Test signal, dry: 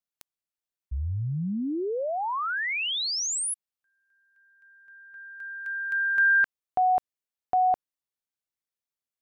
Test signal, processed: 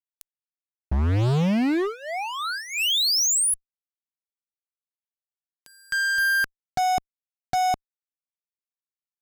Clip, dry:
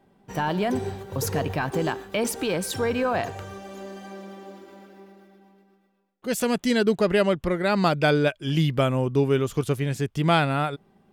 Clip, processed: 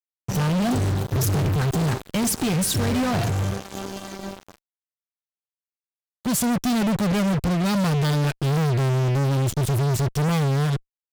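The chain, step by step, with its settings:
graphic EQ with 10 bands 125 Hz +11 dB, 500 Hz −11 dB, 1,000 Hz −6 dB, 2,000 Hz −10 dB
fuzz pedal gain 39 dB, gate −39 dBFS
level −6.5 dB

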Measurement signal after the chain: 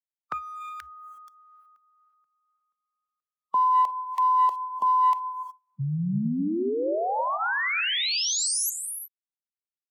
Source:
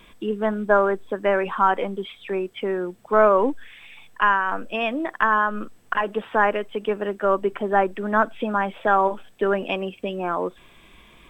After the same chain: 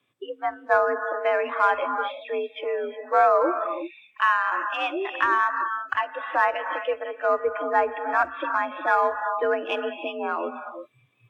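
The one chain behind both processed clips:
high-pass filter 42 Hz 24 dB per octave
reverb whose tail is shaped and stops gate 390 ms rising, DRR 6.5 dB
in parallel at −8 dB: asymmetric clip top −17 dBFS
on the sum: frequency shifter +64 Hz
noise reduction from a noise print of the clip's start 20 dB
level −4.5 dB

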